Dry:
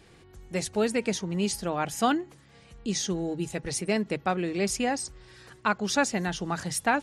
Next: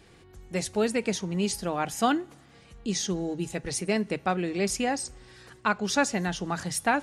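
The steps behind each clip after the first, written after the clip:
coupled-rooms reverb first 0.33 s, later 2.2 s, from −18 dB, DRR 19 dB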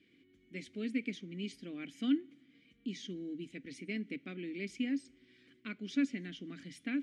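formant filter i
level +1 dB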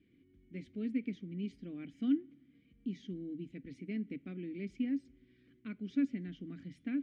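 RIAA equalisation playback
level −6 dB

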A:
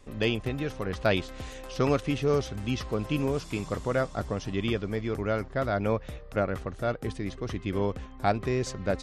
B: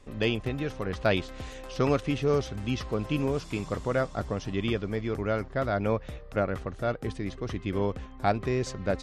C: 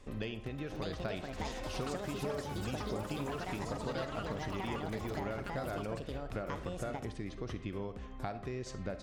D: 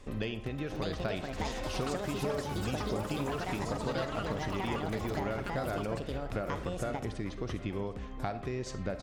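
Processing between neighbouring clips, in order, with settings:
high-shelf EQ 10,000 Hz −7.5 dB
downward compressor 10 to 1, threshold −35 dBFS, peak gain reduction 16 dB; delay with pitch and tempo change per echo 671 ms, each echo +6 semitones, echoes 3; convolution reverb RT60 0.65 s, pre-delay 10 ms, DRR 11 dB; level −1.5 dB
single-tap delay 759 ms −18.5 dB; level +4 dB

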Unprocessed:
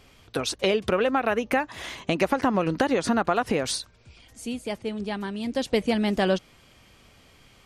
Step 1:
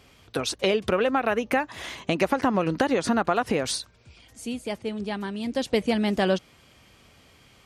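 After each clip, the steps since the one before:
high-pass filter 46 Hz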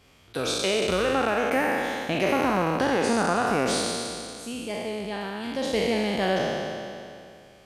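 peak hold with a decay on every bin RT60 2.44 s
level −5 dB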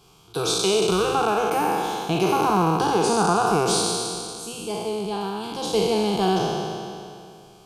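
phaser with its sweep stopped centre 380 Hz, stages 8
level +7 dB

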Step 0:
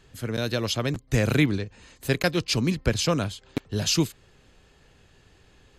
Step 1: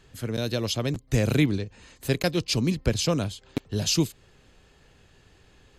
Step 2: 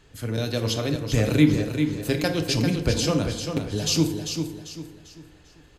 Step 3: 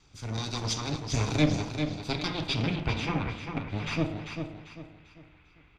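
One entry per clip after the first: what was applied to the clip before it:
dynamic equaliser 1,500 Hz, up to −6 dB, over −44 dBFS, Q 0.98
on a send: repeating echo 395 ms, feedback 35%, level −7 dB; on the sum: feedback delay network reverb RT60 0.92 s, low-frequency decay 0.8×, high-frequency decay 0.5×, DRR 4.5 dB
lower of the sound and its delayed copy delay 0.84 ms; low-pass filter sweep 5,800 Hz → 2,400 Hz, 0:01.61–0:03.21; level −5.5 dB

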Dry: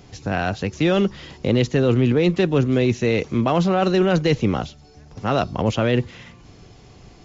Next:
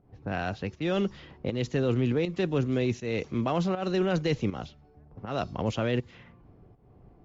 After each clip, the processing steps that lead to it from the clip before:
low-pass that shuts in the quiet parts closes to 810 Hz, open at −16 dBFS
fake sidechain pumping 80 BPM, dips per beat 1, −11 dB, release 257 ms
level −8.5 dB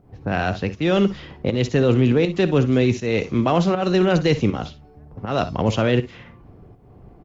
ambience of single reflections 55 ms −15 dB, 66 ms −17.5 dB
level +9 dB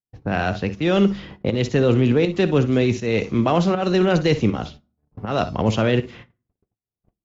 noise gate −39 dBFS, range −49 dB
on a send at −19.5 dB: convolution reverb RT60 0.40 s, pre-delay 5 ms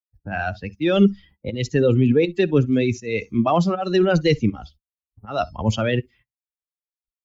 spectral dynamics exaggerated over time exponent 2
level +4 dB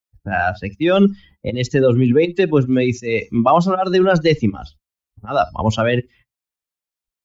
dynamic equaliser 960 Hz, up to +7 dB, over −34 dBFS, Q 0.9
in parallel at +1.5 dB: downward compressor, threshold −24 dBFS, peak gain reduction 14.5 dB
on the sum: level −1 dB

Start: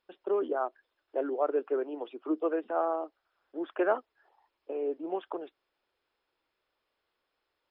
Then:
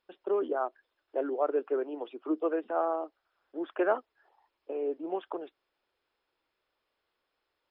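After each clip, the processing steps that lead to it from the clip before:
no processing that can be heard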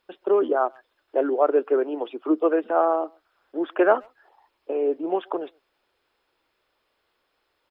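far-end echo of a speakerphone 130 ms, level −29 dB
level +9 dB

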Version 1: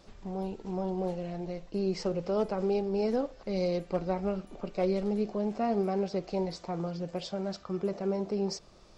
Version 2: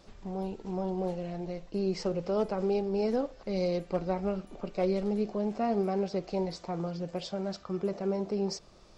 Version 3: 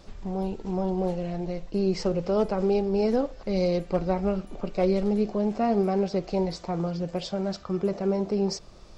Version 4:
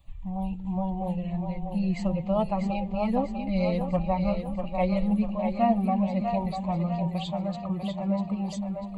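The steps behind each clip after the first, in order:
no processing that can be heard
low-shelf EQ 100 Hz +7 dB; level +4.5 dB
spectral dynamics exaggerated over time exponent 1.5; phaser with its sweep stopped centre 1,500 Hz, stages 6; echo with a time of its own for lows and highs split 320 Hz, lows 247 ms, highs 645 ms, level −6 dB; level +5.5 dB

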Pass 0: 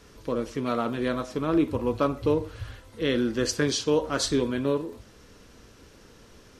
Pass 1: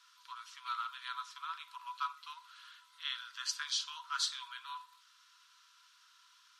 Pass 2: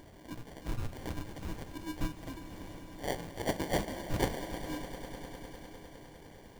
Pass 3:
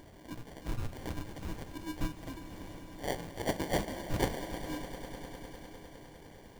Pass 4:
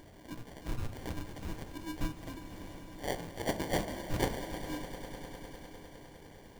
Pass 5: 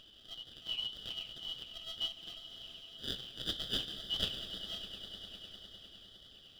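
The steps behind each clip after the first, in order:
Chebyshev high-pass with heavy ripple 960 Hz, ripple 9 dB; level −2.5 dB
in parallel at −3 dB: upward compression, threshold −44 dBFS; on the sum: sample-rate reduction 1,300 Hz, jitter 0%; echo that builds up and dies away 101 ms, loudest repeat 5, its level −16.5 dB
no processing that can be heard
hum removal 53.24 Hz, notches 28
band-splitting scrambler in four parts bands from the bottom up 3412; spectral tilt −2.5 dB per octave; flanger 1.9 Hz, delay 1.1 ms, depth 8.3 ms, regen −70%; level +3.5 dB

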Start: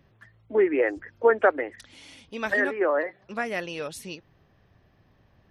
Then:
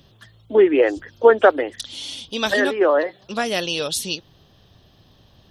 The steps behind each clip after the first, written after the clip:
high shelf with overshoot 2,700 Hz +7.5 dB, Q 3
level +7.5 dB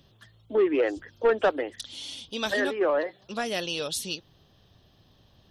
soft clipping −8.5 dBFS, distortion −15 dB
level −6.5 dB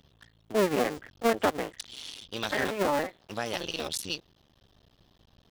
sub-harmonics by changed cycles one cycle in 2, muted

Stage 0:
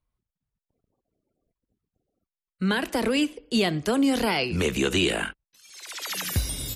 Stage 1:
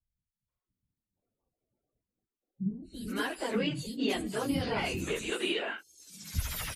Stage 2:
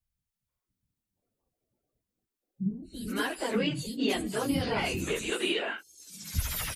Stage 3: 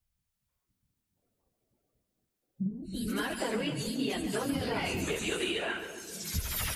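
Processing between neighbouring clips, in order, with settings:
random phases in long frames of 50 ms; three-band delay without the direct sound lows, highs, mids 250/480 ms, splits 260/4,700 Hz; level −6.5 dB
high-shelf EQ 7,800 Hz +3.5 dB; level +2 dB
downward compressor, threshold −33 dBFS, peak gain reduction 10.5 dB; echo with a time of its own for lows and highs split 640 Hz, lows 268 ms, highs 138 ms, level −10 dB; level +3.5 dB

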